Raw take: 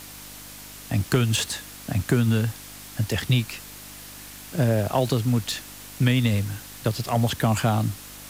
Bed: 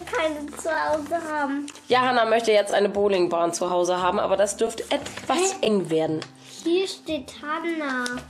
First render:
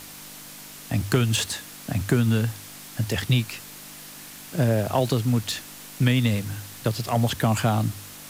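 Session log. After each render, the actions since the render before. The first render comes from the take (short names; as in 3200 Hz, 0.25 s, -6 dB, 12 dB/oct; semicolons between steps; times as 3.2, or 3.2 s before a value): de-hum 50 Hz, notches 2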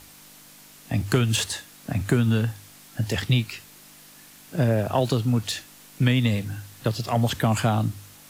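noise print and reduce 7 dB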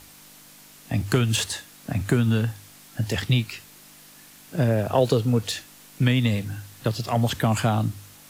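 4.92–5.52 bell 470 Hz +10 dB 0.39 oct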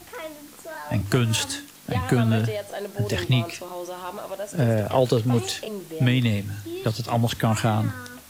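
add bed -12 dB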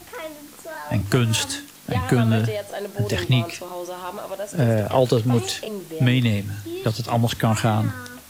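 gain +2 dB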